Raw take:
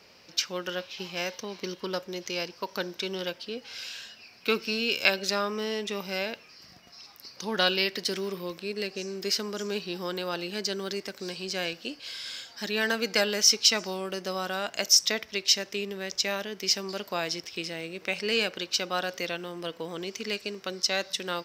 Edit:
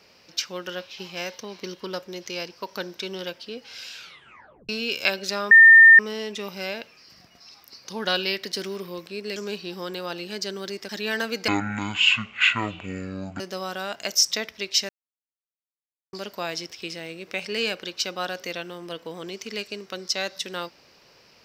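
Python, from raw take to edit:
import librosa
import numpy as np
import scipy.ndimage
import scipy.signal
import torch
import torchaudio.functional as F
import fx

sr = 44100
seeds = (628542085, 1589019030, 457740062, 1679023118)

y = fx.edit(x, sr, fx.tape_stop(start_s=3.94, length_s=0.75),
    fx.insert_tone(at_s=5.51, length_s=0.48, hz=1810.0, db=-6.5),
    fx.cut(start_s=8.88, length_s=0.71),
    fx.cut(start_s=11.12, length_s=1.47),
    fx.speed_span(start_s=13.18, length_s=0.96, speed=0.5),
    fx.silence(start_s=15.63, length_s=1.24), tone=tone)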